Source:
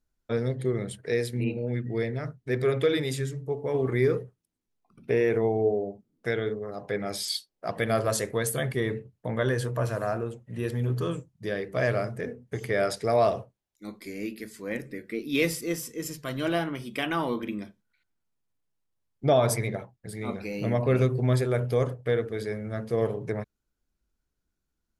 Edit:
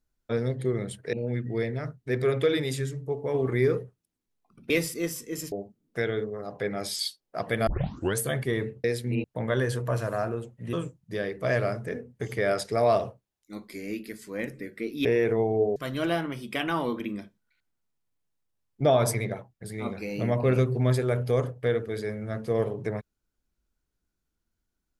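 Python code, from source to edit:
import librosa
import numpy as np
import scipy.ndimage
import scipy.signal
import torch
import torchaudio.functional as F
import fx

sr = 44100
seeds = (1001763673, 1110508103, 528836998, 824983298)

y = fx.edit(x, sr, fx.move(start_s=1.13, length_s=0.4, to_s=9.13),
    fx.swap(start_s=5.1, length_s=0.71, other_s=15.37, other_length_s=0.82),
    fx.tape_start(start_s=7.96, length_s=0.5),
    fx.cut(start_s=10.62, length_s=0.43), tone=tone)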